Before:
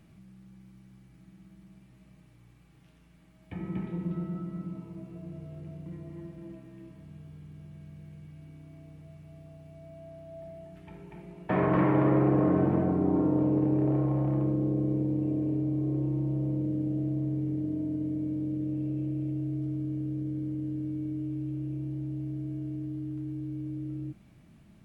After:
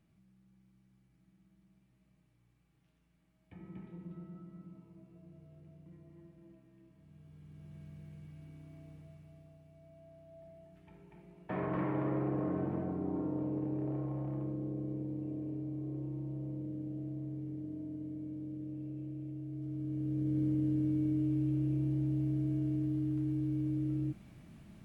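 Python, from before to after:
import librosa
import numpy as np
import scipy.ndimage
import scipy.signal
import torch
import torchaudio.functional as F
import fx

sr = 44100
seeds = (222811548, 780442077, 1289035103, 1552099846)

y = fx.gain(x, sr, db=fx.line((6.91, -14.0), (7.77, -3.5), (8.92, -3.5), (9.66, -10.5), (19.47, -10.5), (20.41, 2.0)))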